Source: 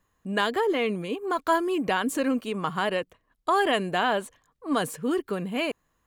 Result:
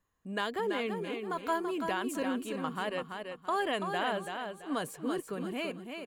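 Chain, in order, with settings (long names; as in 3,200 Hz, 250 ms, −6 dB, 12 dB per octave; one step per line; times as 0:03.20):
repeating echo 334 ms, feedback 30%, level −6 dB
level −8.5 dB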